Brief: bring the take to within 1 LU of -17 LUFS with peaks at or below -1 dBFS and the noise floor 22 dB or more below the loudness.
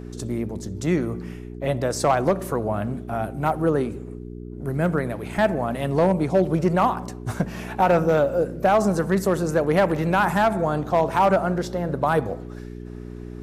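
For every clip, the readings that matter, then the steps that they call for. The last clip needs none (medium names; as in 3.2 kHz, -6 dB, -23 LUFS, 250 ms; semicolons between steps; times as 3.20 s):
clipped samples 0.5%; clipping level -11.0 dBFS; hum 60 Hz; highest harmonic 420 Hz; hum level -34 dBFS; loudness -22.5 LUFS; peak level -11.0 dBFS; loudness target -17.0 LUFS
-> clip repair -11 dBFS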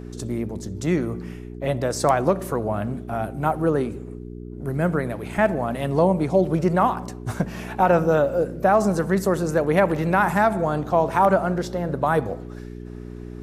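clipped samples 0.0%; hum 60 Hz; highest harmonic 420 Hz; hum level -34 dBFS
-> de-hum 60 Hz, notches 7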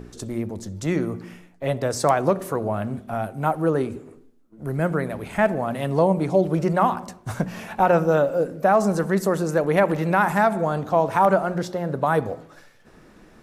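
hum not found; loudness -22.5 LUFS; peak level -5.5 dBFS; loudness target -17.0 LUFS
-> trim +5.5 dB; peak limiter -1 dBFS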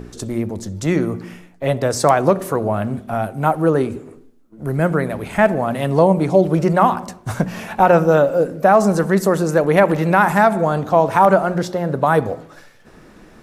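loudness -17.0 LUFS; peak level -1.0 dBFS; noise floor -46 dBFS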